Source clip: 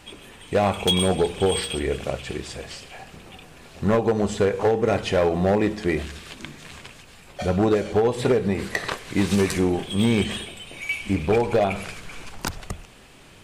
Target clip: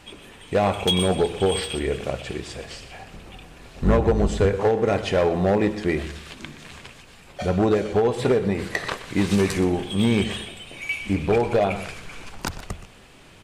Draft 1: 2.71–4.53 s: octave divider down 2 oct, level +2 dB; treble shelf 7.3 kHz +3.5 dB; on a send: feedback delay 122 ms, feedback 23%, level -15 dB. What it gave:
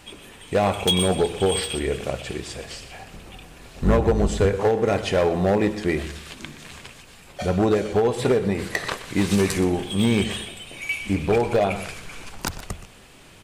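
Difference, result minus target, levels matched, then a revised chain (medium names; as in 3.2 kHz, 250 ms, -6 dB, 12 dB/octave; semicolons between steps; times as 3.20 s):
8 kHz band +4.0 dB
2.71–4.53 s: octave divider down 2 oct, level +2 dB; treble shelf 7.3 kHz -4 dB; on a send: feedback delay 122 ms, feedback 23%, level -15 dB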